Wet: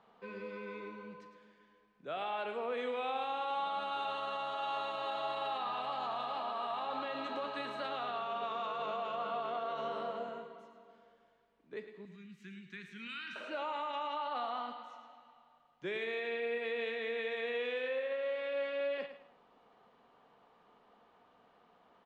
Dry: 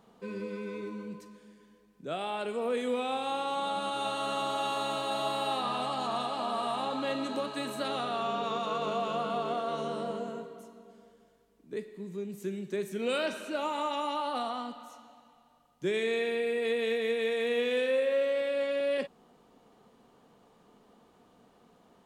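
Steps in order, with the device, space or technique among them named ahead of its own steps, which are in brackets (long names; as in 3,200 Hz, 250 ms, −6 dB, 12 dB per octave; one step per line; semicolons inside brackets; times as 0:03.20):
bass and treble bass +2 dB, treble −11 dB
DJ mixer with the lows and highs turned down (three-way crossover with the lows and the highs turned down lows −13 dB, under 550 Hz, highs −21 dB, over 6,000 Hz; brickwall limiter −30 dBFS, peak gain reduction 7 dB)
0:12.05–0:13.36: Chebyshev band-stop filter 210–1,700 Hz, order 2
repeating echo 107 ms, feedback 30%, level −11 dB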